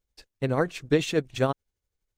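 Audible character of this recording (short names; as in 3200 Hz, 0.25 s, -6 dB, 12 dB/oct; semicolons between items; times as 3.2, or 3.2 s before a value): tremolo triangle 12 Hz, depth 60%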